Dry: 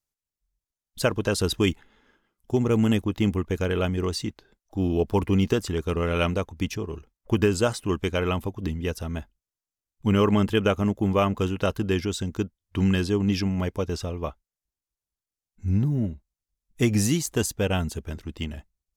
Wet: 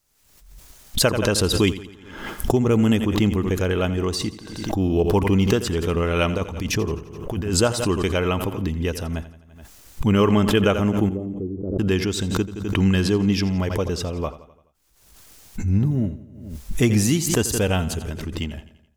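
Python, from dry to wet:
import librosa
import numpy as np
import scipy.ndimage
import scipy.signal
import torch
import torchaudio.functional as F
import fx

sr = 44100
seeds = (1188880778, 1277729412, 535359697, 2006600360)

y = fx.over_compress(x, sr, threshold_db=-27.0, ratio=-0.5, at=(6.37, 7.59), fade=0.02)
y = fx.ladder_lowpass(y, sr, hz=390.0, resonance_pct=55, at=(11.09, 11.79))
y = fx.echo_feedback(y, sr, ms=85, feedback_pct=52, wet_db=-15.0)
y = fx.pre_swell(y, sr, db_per_s=55.0)
y = F.gain(torch.from_numpy(y), 3.0).numpy()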